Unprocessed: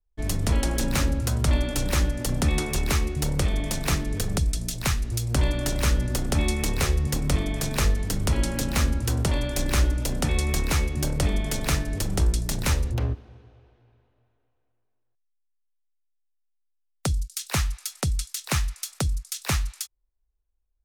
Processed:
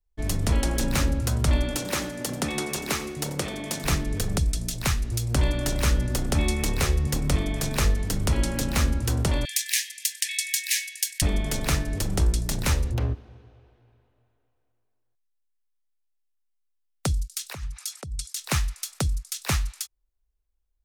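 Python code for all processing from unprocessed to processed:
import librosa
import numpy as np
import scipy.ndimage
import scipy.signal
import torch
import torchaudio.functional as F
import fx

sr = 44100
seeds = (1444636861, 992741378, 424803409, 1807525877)

y = fx.chain(x, sr, fx.highpass(hz=190.0, slope=12),
    fx.echo_feedback(ms=88, feedback_pct=35, wet_db=-16), at=(1.76, 3.84))
y = fx.chain(y, sr, fx.brickwall_highpass(low_hz=1600.0),
    fx.high_shelf(hz=3000.0, db=8.0), at=(9.45, 11.22))
y = fx.chain(y, sr, fx.envelope_sharpen(power=1.5),
    fx.highpass(hz=79.0, slope=12),
    fx.over_compress(threshold_db=-32.0, ratio=-1.0), at=(17.53, 18.37))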